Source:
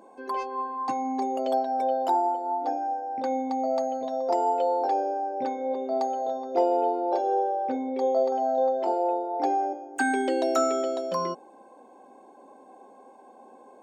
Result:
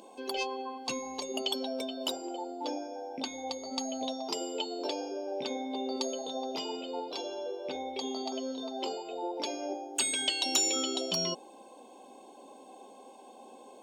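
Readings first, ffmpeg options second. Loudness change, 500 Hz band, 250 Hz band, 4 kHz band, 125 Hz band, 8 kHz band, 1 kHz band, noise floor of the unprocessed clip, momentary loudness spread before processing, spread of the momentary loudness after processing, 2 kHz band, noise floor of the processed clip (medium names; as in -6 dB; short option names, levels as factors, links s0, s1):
-7.0 dB, -10.5 dB, -5.5 dB, +14.0 dB, no reading, +10.5 dB, -14.0 dB, -52 dBFS, 6 LU, 24 LU, -6.0 dB, -53 dBFS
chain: -af "afftfilt=real='re*lt(hypot(re,im),0.2)':imag='im*lt(hypot(re,im),0.2)':win_size=1024:overlap=0.75,highshelf=f=2300:t=q:w=3:g=9.5"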